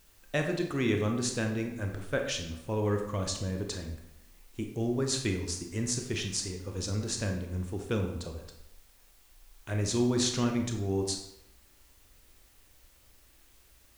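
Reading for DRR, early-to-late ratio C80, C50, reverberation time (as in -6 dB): 3.0 dB, 9.0 dB, 6.0 dB, 0.80 s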